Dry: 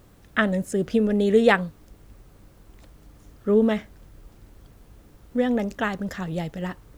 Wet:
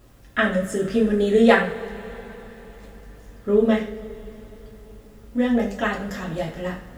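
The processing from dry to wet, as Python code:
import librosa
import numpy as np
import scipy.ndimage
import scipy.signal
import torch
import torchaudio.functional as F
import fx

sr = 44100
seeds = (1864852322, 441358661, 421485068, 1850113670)

y = fx.rev_double_slope(x, sr, seeds[0], early_s=0.4, late_s=4.4, knee_db=-22, drr_db=-3.5)
y = F.gain(torch.from_numpy(y), -2.5).numpy()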